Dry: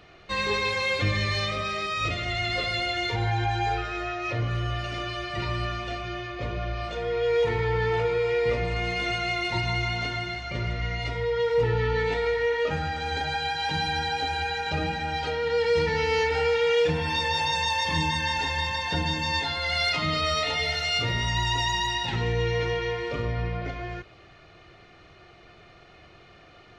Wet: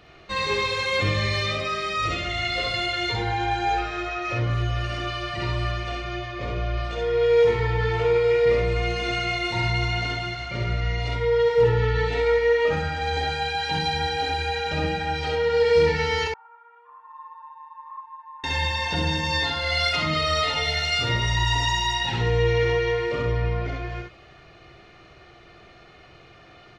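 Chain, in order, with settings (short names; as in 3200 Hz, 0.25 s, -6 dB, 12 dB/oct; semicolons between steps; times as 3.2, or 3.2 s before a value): 16.27–18.44 Butterworth band-pass 1100 Hz, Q 7; early reflections 51 ms -6.5 dB, 66 ms -3 dB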